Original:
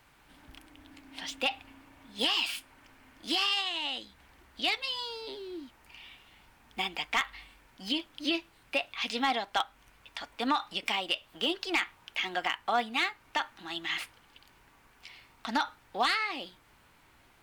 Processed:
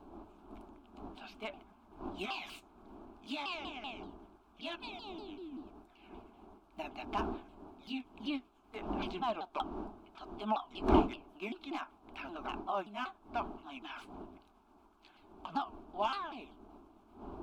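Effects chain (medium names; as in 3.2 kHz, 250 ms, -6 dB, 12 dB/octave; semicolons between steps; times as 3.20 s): sawtooth pitch modulation -6.5 st, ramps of 192 ms; wind noise 440 Hz -37 dBFS; tone controls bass -4 dB, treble -14 dB; static phaser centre 510 Hz, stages 6; trim -2 dB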